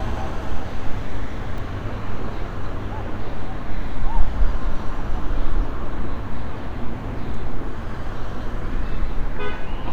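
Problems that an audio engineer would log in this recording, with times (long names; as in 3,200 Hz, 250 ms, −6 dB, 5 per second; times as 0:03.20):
0:01.58: drop-out 2.5 ms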